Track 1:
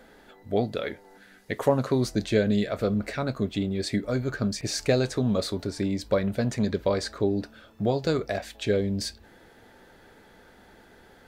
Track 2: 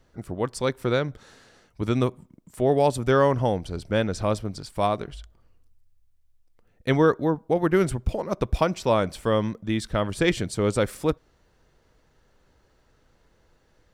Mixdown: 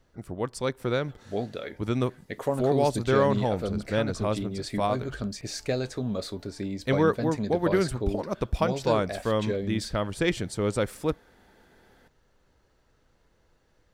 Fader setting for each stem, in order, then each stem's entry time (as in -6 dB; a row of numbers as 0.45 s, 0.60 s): -5.5 dB, -3.5 dB; 0.80 s, 0.00 s